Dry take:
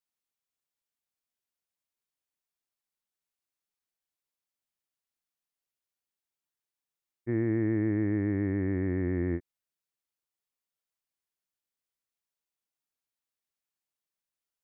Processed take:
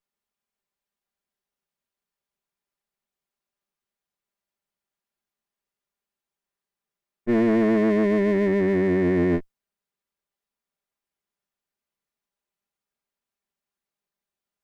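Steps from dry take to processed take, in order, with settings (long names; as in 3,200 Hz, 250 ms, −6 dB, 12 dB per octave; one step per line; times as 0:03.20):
lower of the sound and its delayed copy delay 5 ms
one half of a high-frequency compander decoder only
level +9 dB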